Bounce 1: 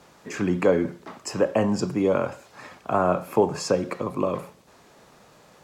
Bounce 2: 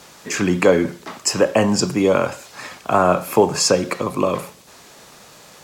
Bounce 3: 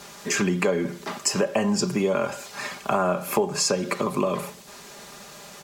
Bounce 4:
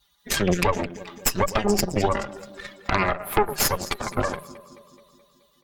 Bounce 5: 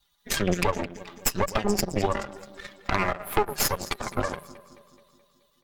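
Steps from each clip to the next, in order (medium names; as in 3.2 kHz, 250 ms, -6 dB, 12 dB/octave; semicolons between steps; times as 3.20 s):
treble shelf 2.2 kHz +11 dB; trim +5 dB
comb 5 ms, depth 57%; compression 4:1, threshold -21 dBFS, peak gain reduction 12.5 dB
expander on every frequency bin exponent 2; echo whose repeats swap between lows and highs 107 ms, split 950 Hz, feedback 76%, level -11 dB; Chebyshev shaper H 6 -6 dB, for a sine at -10.5 dBFS
partial rectifier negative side -7 dB; trim -2 dB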